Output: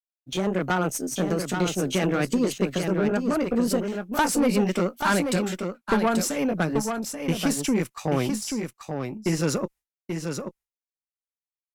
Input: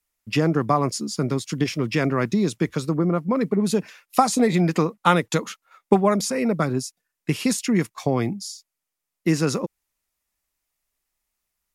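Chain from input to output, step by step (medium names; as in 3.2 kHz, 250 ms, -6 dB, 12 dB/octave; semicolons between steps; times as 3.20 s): pitch bend over the whole clip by +4 st ending unshifted; expander -41 dBFS; valve stage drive 18 dB, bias 0.4; level rider gain up to 4.5 dB; on a send: delay 834 ms -6 dB; on the sum: trim -3 dB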